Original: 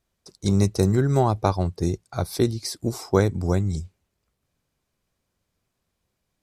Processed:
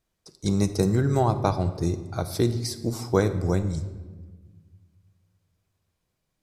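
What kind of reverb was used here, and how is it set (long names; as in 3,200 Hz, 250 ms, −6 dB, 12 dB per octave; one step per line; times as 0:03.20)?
rectangular room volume 1,200 cubic metres, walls mixed, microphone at 0.57 metres
level −2 dB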